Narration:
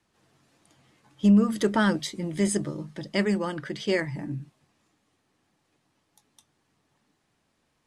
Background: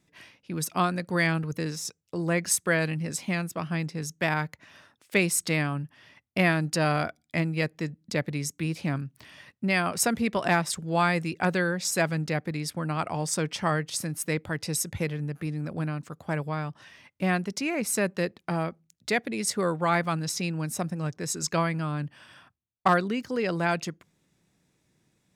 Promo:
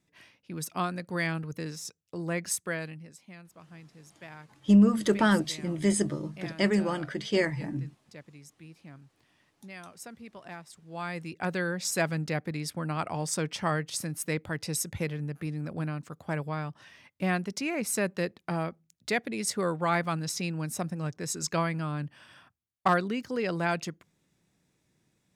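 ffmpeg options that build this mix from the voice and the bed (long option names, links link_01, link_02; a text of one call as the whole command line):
ffmpeg -i stem1.wav -i stem2.wav -filter_complex "[0:a]adelay=3450,volume=-0.5dB[link_01];[1:a]volume=12dB,afade=type=out:start_time=2.48:duration=0.66:silence=0.188365,afade=type=in:start_time=10.81:duration=1.06:silence=0.133352[link_02];[link_01][link_02]amix=inputs=2:normalize=0" out.wav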